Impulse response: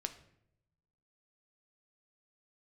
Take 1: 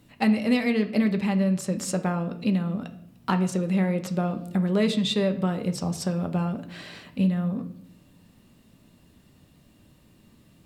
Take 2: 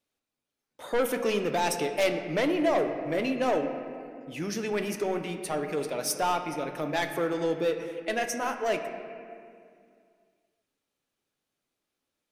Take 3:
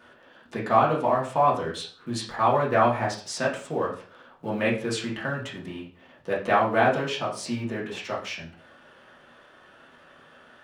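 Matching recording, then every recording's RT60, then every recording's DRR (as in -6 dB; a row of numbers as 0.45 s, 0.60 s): 1; 0.75 s, 2.3 s, 0.40 s; 7.0 dB, 6.0 dB, -5.5 dB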